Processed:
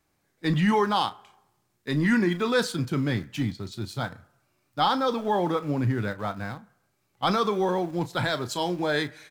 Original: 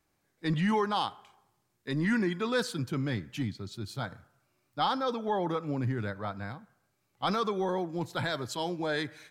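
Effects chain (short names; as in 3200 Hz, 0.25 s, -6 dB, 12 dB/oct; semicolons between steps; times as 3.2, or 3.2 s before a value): in parallel at -10.5 dB: sample gate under -38 dBFS; on the sum: doubler 34 ms -13 dB; gain +3 dB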